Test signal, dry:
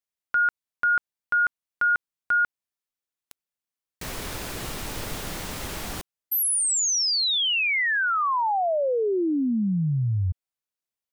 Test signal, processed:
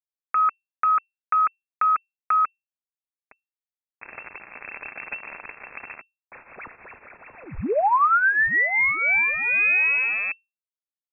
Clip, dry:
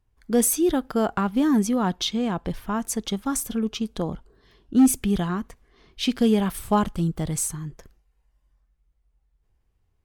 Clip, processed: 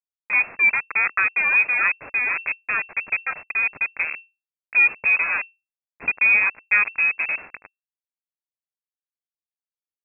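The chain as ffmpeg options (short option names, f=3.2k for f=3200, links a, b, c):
-filter_complex "[0:a]adynamicequalizer=threshold=0.0178:dfrequency=1500:dqfactor=1.4:tfrequency=1500:tqfactor=1.4:attack=5:release=100:ratio=0.438:range=2:mode=boostabove:tftype=bell,aecho=1:1:5.3:0.36,asplit=2[a][b];[b]acompressor=threshold=-32dB:ratio=6:attack=1.4:release=371:knee=6:detection=peak,volume=0dB[c];[a][c]amix=inputs=2:normalize=0,aeval=exprs='val(0)*gte(abs(val(0)),0.0794)':c=same,lowpass=f=2.3k:t=q:w=0.5098,lowpass=f=2.3k:t=q:w=0.6013,lowpass=f=2.3k:t=q:w=0.9,lowpass=f=2.3k:t=q:w=2.563,afreqshift=-2700"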